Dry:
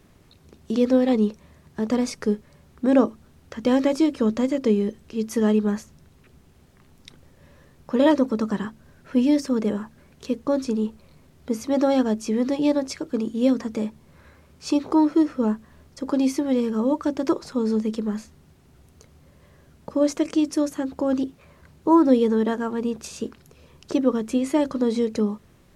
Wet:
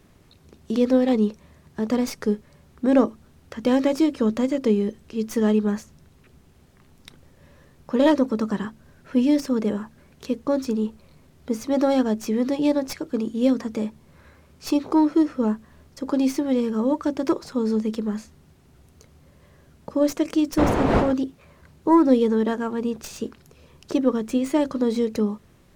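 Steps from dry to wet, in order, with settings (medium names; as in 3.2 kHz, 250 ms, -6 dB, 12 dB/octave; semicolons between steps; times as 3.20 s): tracing distortion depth 0.049 ms; 20.57–21.11 s: wind noise 620 Hz -22 dBFS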